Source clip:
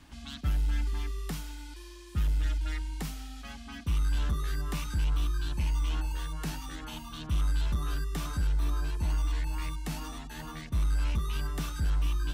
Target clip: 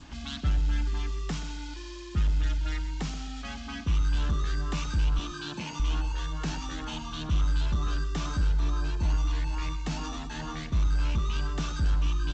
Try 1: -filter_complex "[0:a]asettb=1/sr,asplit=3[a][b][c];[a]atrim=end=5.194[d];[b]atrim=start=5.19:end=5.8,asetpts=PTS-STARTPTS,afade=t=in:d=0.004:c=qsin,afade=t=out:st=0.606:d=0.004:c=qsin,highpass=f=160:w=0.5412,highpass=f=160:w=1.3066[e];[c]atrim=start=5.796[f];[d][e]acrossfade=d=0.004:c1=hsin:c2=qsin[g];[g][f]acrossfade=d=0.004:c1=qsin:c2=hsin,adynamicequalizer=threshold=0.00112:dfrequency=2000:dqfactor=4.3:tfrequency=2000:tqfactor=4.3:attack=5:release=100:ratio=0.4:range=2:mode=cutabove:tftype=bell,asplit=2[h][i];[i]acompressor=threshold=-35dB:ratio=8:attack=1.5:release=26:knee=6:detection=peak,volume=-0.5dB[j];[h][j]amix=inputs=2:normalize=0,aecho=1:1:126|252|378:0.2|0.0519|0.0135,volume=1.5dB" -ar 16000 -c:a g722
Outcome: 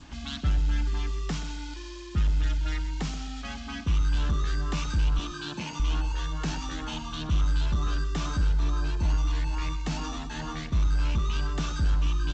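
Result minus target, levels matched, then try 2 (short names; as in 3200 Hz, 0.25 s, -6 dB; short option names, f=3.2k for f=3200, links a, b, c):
compressor: peak gain reduction -5.5 dB
-filter_complex "[0:a]asettb=1/sr,asplit=3[a][b][c];[a]atrim=end=5.194[d];[b]atrim=start=5.19:end=5.8,asetpts=PTS-STARTPTS,afade=t=in:d=0.004:c=qsin,afade=t=out:st=0.606:d=0.004:c=qsin,highpass=f=160:w=0.5412,highpass=f=160:w=1.3066[e];[c]atrim=start=5.796[f];[d][e]acrossfade=d=0.004:c1=hsin:c2=qsin[g];[g][f]acrossfade=d=0.004:c1=qsin:c2=hsin,adynamicequalizer=threshold=0.00112:dfrequency=2000:dqfactor=4.3:tfrequency=2000:tqfactor=4.3:attack=5:release=100:ratio=0.4:range=2:mode=cutabove:tftype=bell,asplit=2[h][i];[i]acompressor=threshold=-41.5dB:ratio=8:attack=1.5:release=26:knee=6:detection=peak,volume=-0.5dB[j];[h][j]amix=inputs=2:normalize=0,aecho=1:1:126|252|378:0.2|0.0519|0.0135,volume=1.5dB" -ar 16000 -c:a g722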